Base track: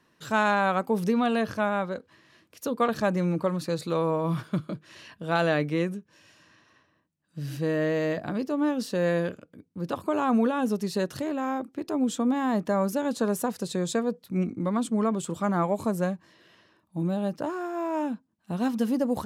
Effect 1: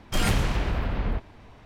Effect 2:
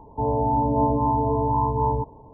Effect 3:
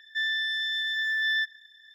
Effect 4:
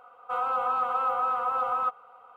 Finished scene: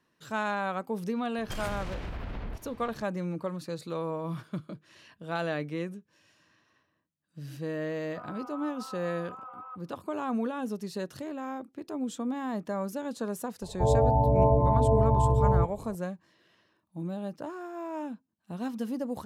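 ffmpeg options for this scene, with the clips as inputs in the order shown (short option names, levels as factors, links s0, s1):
-filter_complex "[0:a]volume=0.422[s0];[1:a]acompressor=threshold=0.0282:ratio=6:attack=3.2:release=140:knee=1:detection=peak[s1];[4:a]highpass=690,lowpass=2000[s2];[2:a]aecho=1:1:1.6:0.81[s3];[s1]atrim=end=1.65,asetpts=PTS-STARTPTS,volume=0.794,afade=t=in:d=0.004:c=hsin,afade=t=out:st=1.646:d=0.004:c=hsin,adelay=1380[s4];[s2]atrim=end=2.36,asetpts=PTS-STARTPTS,volume=0.168,afade=t=in:d=0.004:c=hsin,afade=t=out:st=2.356:d=0.004:c=hsin,adelay=346626S[s5];[s3]atrim=end=2.33,asetpts=PTS-STARTPTS,volume=0.891,afade=t=in:d=0.004:c=hsin,afade=t=out:st=2.326:d=0.004:c=hsin,adelay=13620[s6];[s0][s4][s5][s6]amix=inputs=4:normalize=0"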